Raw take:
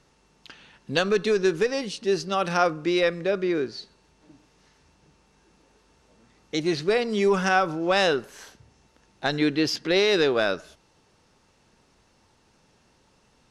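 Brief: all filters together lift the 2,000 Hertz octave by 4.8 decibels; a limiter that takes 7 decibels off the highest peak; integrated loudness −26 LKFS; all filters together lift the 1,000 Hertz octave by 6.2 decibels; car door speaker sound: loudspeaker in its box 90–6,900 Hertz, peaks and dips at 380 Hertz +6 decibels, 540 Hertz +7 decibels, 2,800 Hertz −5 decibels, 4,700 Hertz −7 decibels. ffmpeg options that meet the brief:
ffmpeg -i in.wav -af "equalizer=frequency=1000:width_type=o:gain=7,equalizer=frequency=2000:width_type=o:gain=4.5,alimiter=limit=-9.5dB:level=0:latency=1,highpass=90,equalizer=frequency=380:width_type=q:width=4:gain=6,equalizer=frequency=540:width_type=q:width=4:gain=7,equalizer=frequency=2800:width_type=q:width=4:gain=-5,equalizer=frequency=4700:width_type=q:width=4:gain=-7,lowpass=frequency=6900:width=0.5412,lowpass=frequency=6900:width=1.3066,volume=-7dB" out.wav

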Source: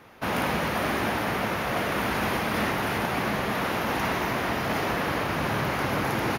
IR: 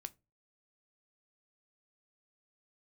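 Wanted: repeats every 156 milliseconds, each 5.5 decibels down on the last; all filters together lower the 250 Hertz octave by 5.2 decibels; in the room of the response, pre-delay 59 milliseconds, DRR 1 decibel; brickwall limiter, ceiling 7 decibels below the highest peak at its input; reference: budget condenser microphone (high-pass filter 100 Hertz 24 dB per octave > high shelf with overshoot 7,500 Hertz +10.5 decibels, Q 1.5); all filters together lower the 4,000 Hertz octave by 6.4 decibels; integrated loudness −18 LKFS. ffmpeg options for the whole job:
-filter_complex "[0:a]equalizer=frequency=250:width_type=o:gain=-7,equalizer=frequency=4000:width_type=o:gain=-7,alimiter=limit=-22.5dB:level=0:latency=1,aecho=1:1:156|312|468|624|780|936|1092:0.531|0.281|0.149|0.079|0.0419|0.0222|0.0118,asplit=2[link_01][link_02];[1:a]atrim=start_sample=2205,adelay=59[link_03];[link_02][link_03]afir=irnorm=-1:irlink=0,volume=3.5dB[link_04];[link_01][link_04]amix=inputs=2:normalize=0,highpass=frequency=100:width=0.5412,highpass=frequency=100:width=1.3066,highshelf=frequency=7500:width_type=q:width=1.5:gain=10.5,volume=8.5dB"

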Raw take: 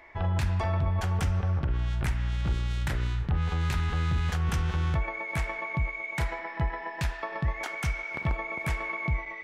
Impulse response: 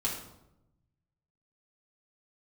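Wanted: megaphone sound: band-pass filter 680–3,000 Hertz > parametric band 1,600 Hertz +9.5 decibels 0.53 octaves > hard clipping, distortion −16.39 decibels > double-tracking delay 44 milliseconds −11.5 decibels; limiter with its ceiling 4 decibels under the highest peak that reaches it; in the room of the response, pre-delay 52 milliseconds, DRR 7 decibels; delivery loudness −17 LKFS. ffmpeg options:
-filter_complex "[0:a]alimiter=limit=-23.5dB:level=0:latency=1,asplit=2[link_01][link_02];[1:a]atrim=start_sample=2205,adelay=52[link_03];[link_02][link_03]afir=irnorm=-1:irlink=0,volume=-12.5dB[link_04];[link_01][link_04]amix=inputs=2:normalize=0,highpass=680,lowpass=3000,equalizer=frequency=1600:width_type=o:width=0.53:gain=9.5,asoftclip=type=hard:threshold=-29dB,asplit=2[link_05][link_06];[link_06]adelay=44,volume=-11.5dB[link_07];[link_05][link_07]amix=inputs=2:normalize=0,volume=17dB"

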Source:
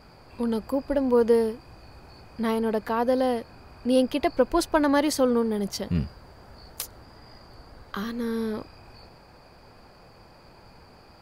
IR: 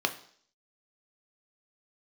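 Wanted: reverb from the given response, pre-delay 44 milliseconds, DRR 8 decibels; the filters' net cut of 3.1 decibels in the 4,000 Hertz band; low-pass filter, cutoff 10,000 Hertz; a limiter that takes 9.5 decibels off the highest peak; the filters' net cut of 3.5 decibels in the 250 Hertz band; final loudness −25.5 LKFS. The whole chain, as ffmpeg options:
-filter_complex "[0:a]lowpass=10000,equalizer=frequency=250:width_type=o:gain=-4,equalizer=frequency=4000:width_type=o:gain=-4,alimiter=limit=-19dB:level=0:latency=1,asplit=2[link_01][link_02];[1:a]atrim=start_sample=2205,adelay=44[link_03];[link_02][link_03]afir=irnorm=-1:irlink=0,volume=-17dB[link_04];[link_01][link_04]amix=inputs=2:normalize=0,volume=4dB"

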